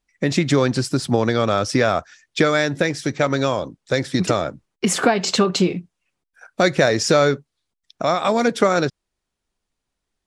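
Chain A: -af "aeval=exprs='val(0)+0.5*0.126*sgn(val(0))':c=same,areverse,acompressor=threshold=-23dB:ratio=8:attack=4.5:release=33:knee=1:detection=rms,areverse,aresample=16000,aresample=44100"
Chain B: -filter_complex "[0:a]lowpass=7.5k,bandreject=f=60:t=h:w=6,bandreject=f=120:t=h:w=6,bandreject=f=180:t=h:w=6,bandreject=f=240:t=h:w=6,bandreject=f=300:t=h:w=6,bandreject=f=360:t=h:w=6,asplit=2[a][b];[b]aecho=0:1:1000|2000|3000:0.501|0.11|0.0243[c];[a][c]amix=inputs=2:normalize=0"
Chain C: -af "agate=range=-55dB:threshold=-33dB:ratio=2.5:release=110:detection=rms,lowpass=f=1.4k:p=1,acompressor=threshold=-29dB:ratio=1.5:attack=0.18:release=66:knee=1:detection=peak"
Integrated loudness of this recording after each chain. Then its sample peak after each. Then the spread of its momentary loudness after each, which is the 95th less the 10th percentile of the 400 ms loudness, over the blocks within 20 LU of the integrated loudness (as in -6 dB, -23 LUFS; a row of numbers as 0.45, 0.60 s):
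-25.0, -20.0, -27.5 LUFS; -15.0, -2.0, -12.0 dBFS; 3, 8, 8 LU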